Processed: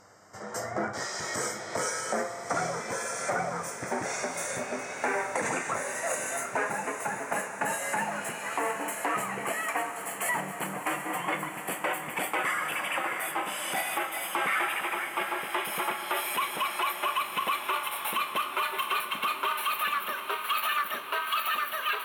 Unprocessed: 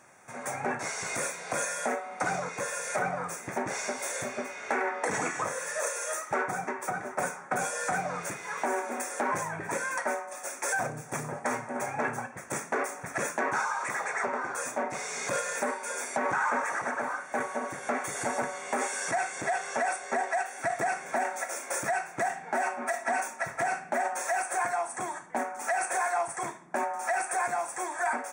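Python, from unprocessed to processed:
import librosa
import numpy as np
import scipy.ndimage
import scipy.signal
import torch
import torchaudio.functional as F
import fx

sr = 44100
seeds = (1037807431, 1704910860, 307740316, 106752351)

y = fx.speed_glide(x, sr, from_pct=83, to_pct=174)
y = fx.dmg_buzz(y, sr, base_hz=100.0, harmonics=15, level_db=-65.0, tilt_db=-1, odd_only=False)
y = fx.echo_diffused(y, sr, ms=763, feedback_pct=66, wet_db=-10.0)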